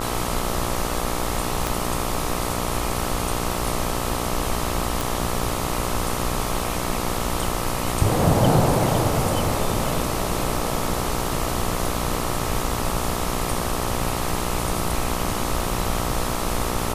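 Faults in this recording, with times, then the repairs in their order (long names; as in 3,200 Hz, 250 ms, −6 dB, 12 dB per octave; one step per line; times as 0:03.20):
mains buzz 60 Hz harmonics 22 −28 dBFS
0:01.67: click
0:05.01: click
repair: click removal
hum removal 60 Hz, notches 22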